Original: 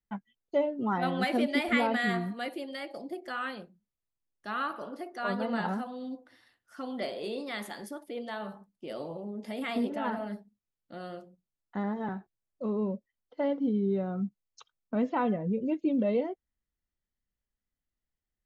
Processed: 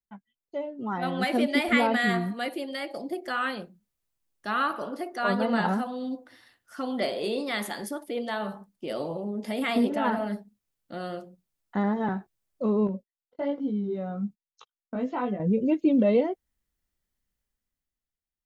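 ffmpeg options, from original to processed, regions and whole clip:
-filter_complex "[0:a]asettb=1/sr,asplit=3[a][b][c];[a]atrim=end=12.874[d];[b]atrim=start=12.87:end=15.4,asetpts=PTS-STARTPTS,afade=t=in:d=0.004:c=qsin,afade=t=out:st=2.526:d=0.004:c=qsin,agate=range=-24dB:threshold=-53dB:ratio=16:release=100:detection=peak,acompressor=threshold=-37dB:ratio=1.5:attack=3.2:release=140:knee=1:detection=peak,flanger=delay=15:depth=5.5:speed=1.2[e];[c]atrim=start=15.396[f];[d][e]acrossfade=d=0.004:c1=hsin:c2=qsin[g];[g][f]acrossfade=d=0.004:c1=qsin:c2=hsin,highshelf=f=7.4k:g=4,dynaudnorm=f=160:g=13:m=14.5dB,volume=-8dB"

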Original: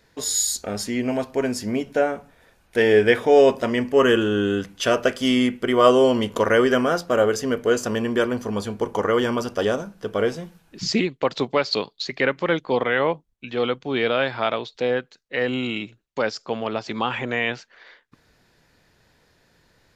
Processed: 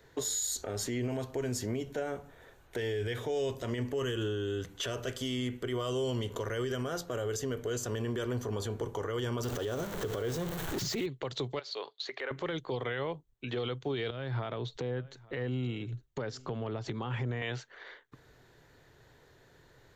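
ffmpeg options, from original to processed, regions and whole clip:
-filter_complex "[0:a]asettb=1/sr,asplit=3[a][b][c];[a]atrim=end=9.434[d];[b]atrim=start=9.43:end=11.06,asetpts=PTS-STARTPTS,afade=t=in:d=0.004:c=qsin,afade=t=out:st=1.626:d=0.004:c=qsin,aeval=exprs='val(0)+0.5*0.0335*sgn(val(0))':c=same,acompressor=threshold=-25dB:ratio=2:attack=3.2:release=140:knee=1:detection=peak[e];[c]atrim=start=11.056[f];[d][e]acrossfade=d=0.004:c1=hsin:c2=qsin[g];[g][f]acrossfade=d=0.004:c1=qsin:c2=hsin,asettb=1/sr,asplit=3[h][i][j];[h]atrim=end=11.594[k];[i]atrim=start=11.59:end=12.31,asetpts=PTS-STARTPTS,afade=t=in:d=0.004:c=qsin,afade=t=out:st=0.716:d=0.004:c=qsin,highpass=550,lowpass=5.5k,acompressor=threshold=-31dB:ratio=6:attack=3.2:release=140:knee=1:detection=peak[l];[j]atrim=start=12.306[m];[k][l]acrossfade=d=0.004:c1=hsin:c2=qsin[n];[n][m]acrossfade=d=0.004:c1=qsin:c2=hsin,asettb=1/sr,asplit=3[o][p][q];[o]atrim=end=14.104[r];[p]atrim=start=14.1:end=17.42,asetpts=PTS-STARTPTS,afade=t=in:d=0.004:c=qsin,afade=t=out:st=3.316:d=0.004:c=qsin,bass=f=250:g=14,treble=f=4k:g=1,acompressor=threshold=-33dB:ratio=5:attack=3.2:release=140:knee=1:detection=peak,aecho=1:1:858:0.0668,atrim=end_sample=146412[s];[q]atrim=start=17.416[t];[r][s]acrossfade=d=0.004:c1=hsin:c2=qsin[u];[u][t]acrossfade=d=0.004:c1=qsin:c2=hsin,equalizer=f=125:t=o:w=0.33:g=6,equalizer=f=200:t=o:w=0.33:g=-10,equalizer=f=400:t=o:w=0.33:g=6,equalizer=f=2.5k:t=o:w=0.33:g=-6,equalizer=f=5k:t=o:w=0.33:g=-9,equalizer=f=10k:t=o:w=0.33:g=-10,acrossover=split=150|3000[v][w][x];[w]acompressor=threshold=-30dB:ratio=4[y];[v][y][x]amix=inputs=3:normalize=0,alimiter=level_in=1.5dB:limit=-24dB:level=0:latency=1:release=46,volume=-1.5dB"

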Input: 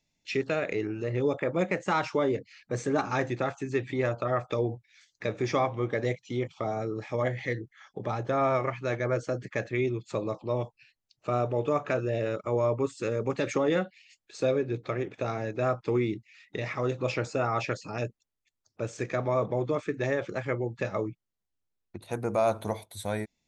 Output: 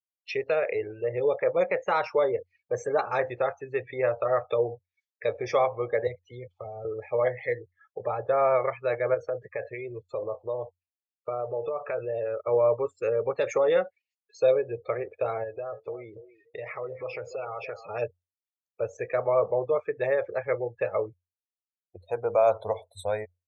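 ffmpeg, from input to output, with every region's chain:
-filter_complex "[0:a]asettb=1/sr,asplit=3[a][b][c];[a]atrim=end=6.074[d];[b]atrim=start=6.07:end=6.85,asetpts=PTS-STARTPTS,afade=t=in:d=0.004:c=qsin,afade=t=out:st=0.776:d=0.004:c=qsin,bandreject=f=5.7k:w=29,acrossover=split=210|3000[e][f][g];[f]acompressor=threshold=-43dB:ratio=3:attack=3.2:release=140:knee=2.83:detection=peak[h];[e][h][g]amix=inputs=3:normalize=0,acrusher=bits=8:mode=log:mix=0:aa=0.000001[i];[c]atrim=start=6.846[j];[d][i]acrossfade=d=0.004:c1=hsin:c2=qsin[k];[k][j]acrossfade=d=0.004:c1=qsin:c2=hsin,asettb=1/sr,asplit=3[l][m][n];[l]atrim=end=9.144[o];[m]atrim=start=9.14:end=12.41,asetpts=PTS-STARTPTS,afade=t=in:d=0.004:c=qsin,afade=t=out:st=3.266:d=0.004:c=qsin,agate=range=-33dB:threshold=-50dB:ratio=3:release=100:detection=peak,acompressor=threshold=-28dB:ratio=12:attack=3.2:release=140:knee=1:detection=peak[p];[n]atrim=start=12.406[q];[o][p]acrossfade=d=0.004:c1=hsin:c2=qsin[r];[r][q]acrossfade=d=0.004:c1=qsin:c2=hsin,asettb=1/sr,asplit=3[s][t][u];[s]atrim=end=15.434[v];[t]atrim=start=15.43:end=17.87,asetpts=PTS-STARTPTS,afade=t=in:d=0.004:c=qsin,afade=t=out:st=2.436:d=0.004:c=qsin,acompressor=threshold=-32dB:ratio=16:attack=3.2:release=140:knee=1:detection=peak,aecho=1:1:286|572|858:0.282|0.0592|0.0124,atrim=end_sample=107604[w];[u]atrim=start=17.866[x];[v][w]acrossfade=d=0.004:c1=hsin:c2=qsin[y];[y][x]acrossfade=d=0.004:c1=qsin:c2=hsin,lowshelf=f=370:t=q:w=3:g=-9,afftdn=nr=34:nf=-41,equalizer=f=89:w=5:g=14.5"

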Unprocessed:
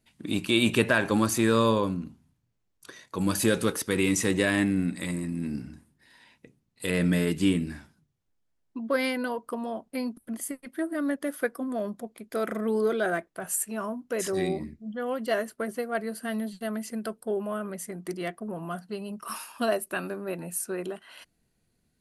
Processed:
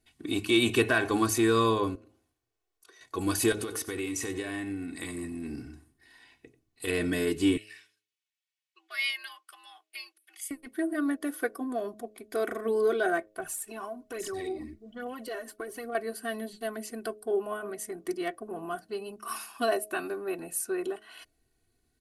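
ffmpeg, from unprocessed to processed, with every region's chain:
-filter_complex "[0:a]asettb=1/sr,asplit=3[a][b][c];[a]atrim=end=1.954[d];[b]atrim=start=1.95:end=3.01,asetpts=PTS-STARTPTS,afade=t=in:d=0.004:c=qsin,afade=t=out:st=1.056:d=0.004:c=qsin,lowshelf=f=290:t=q:w=1.5:g=-11,acompressor=threshold=-60dB:ratio=2:attack=3.2:release=140:knee=1:detection=peak[e];[c]atrim=start=3.006[f];[d][e]acrossfade=d=0.004:c1=hsin:c2=qsin[g];[g][f]acrossfade=d=0.004:c1=qsin:c2=hsin,asettb=1/sr,asplit=3[h][i][j];[h]atrim=end=3.524[k];[i]atrim=start=3.52:end=6.87,asetpts=PTS-STARTPTS,afade=t=in:d=0.004:c=qsin,afade=t=out:st=3.346:d=0.004:c=qsin,acompressor=threshold=-28dB:ratio=12:attack=3.2:release=140:knee=1:detection=peak,aecho=1:1:91:0.158,atrim=end_sample=147735[l];[j]atrim=start=6.866[m];[k][l]acrossfade=d=0.004:c1=hsin:c2=qsin[n];[n][m]acrossfade=d=0.004:c1=qsin:c2=hsin,asettb=1/sr,asplit=3[o][p][q];[o]atrim=end=7.574[r];[p]atrim=start=7.57:end=10.51,asetpts=PTS-STARTPTS,afade=t=in:d=0.004:c=qsin,afade=t=out:st=2.936:d=0.004:c=qsin,highpass=f=2.4k:t=q:w=1.9,highshelf=f=9.8k:g=-6.5,afreqshift=99[s];[q]atrim=start=10.506[t];[r][s]acrossfade=d=0.004:c1=hsin:c2=qsin[u];[u][t]acrossfade=d=0.004:c1=qsin:c2=hsin,asettb=1/sr,asplit=3[v][w][x];[v]atrim=end=13.404[y];[w]atrim=start=13.4:end=15.95,asetpts=PTS-STARTPTS,afade=t=in:d=0.004:c=qsin,afade=t=out:st=2.546:d=0.004:c=qsin,aphaser=in_gain=1:out_gain=1:delay=4:decay=0.58:speed=1.2:type=triangular,acompressor=threshold=-33dB:ratio=5:attack=3.2:release=140:knee=1:detection=peak[z];[x]atrim=start=15.946[aa];[y][z]acrossfade=d=0.004:c1=hsin:c2=qsin[ab];[ab][aa]acrossfade=d=0.004:c1=qsin:c2=hsin,aecho=1:1:2.7:0.75,bandreject=f=106:t=h:w=4,bandreject=f=212:t=h:w=4,bandreject=f=318:t=h:w=4,bandreject=f=424:t=h:w=4,bandreject=f=530:t=h:w=4,bandreject=f=636:t=h:w=4,acontrast=40,volume=-8dB"

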